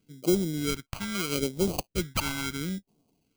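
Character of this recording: aliases and images of a low sample rate 1800 Hz, jitter 0%; phasing stages 2, 0.75 Hz, lowest notch 390–1600 Hz

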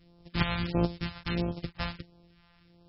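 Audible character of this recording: a buzz of ramps at a fixed pitch in blocks of 256 samples; phasing stages 2, 1.5 Hz, lowest notch 330–1900 Hz; MP3

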